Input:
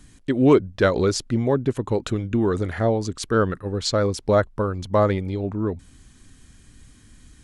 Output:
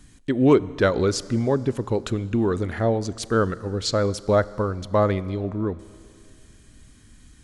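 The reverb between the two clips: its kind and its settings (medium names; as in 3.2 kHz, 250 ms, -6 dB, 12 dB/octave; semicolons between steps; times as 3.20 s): Schroeder reverb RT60 2.5 s, combs from 27 ms, DRR 18 dB; trim -1 dB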